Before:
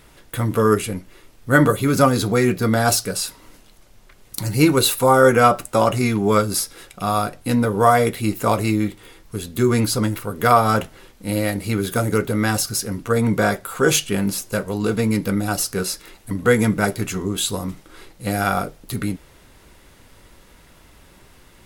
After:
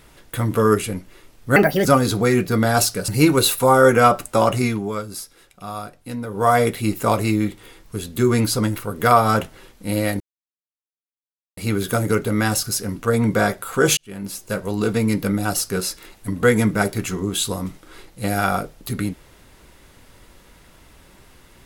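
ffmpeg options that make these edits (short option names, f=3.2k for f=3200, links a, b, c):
-filter_complex "[0:a]asplit=8[a][b][c][d][e][f][g][h];[a]atrim=end=1.564[i];[b]atrim=start=1.56:end=1.96,asetpts=PTS-STARTPTS,asetrate=60417,aresample=44100[j];[c]atrim=start=1.956:end=3.192[k];[d]atrim=start=4.478:end=6.32,asetpts=PTS-STARTPTS,afade=t=out:st=1.532:d=0.31:silence=0.298538[l];[e]atrim=start=6.32:end=7.67,asetpts=PTS-STARTPTS,volume=-10.5dB[m];[f]atrim=start=7.67:end=11.6,asetpts=PTS-STARTPTS,afade=t=in:d=0.31:silence=0.298538,afade=t=out:st=3.926:d=0.004:c=hsin,apad=pad_dur=1.37[n];[g]atrim=start=11.6:end=14,asetpts=PTS-STARTPTS,afade=t=in:d=0.004:c=hsin,afade=t=out:st=2.396:d=0.004:c=hsin[o];[h]atrim=start=14,asetpts=PTS-STARTPTS,afade=t=in:d=0.72[p];[i][j]acrossfade=d=0.004:c1=hsin:c2=hsin[q];[q][k]acrossfade=d=0.004:c1=hsin:c2=hsin[r];[l][m][n][o][p]concat=n=5:v=0:a=1[s];[r][s]acrossfade=d=0.004:c1=hsin:c2=hsin"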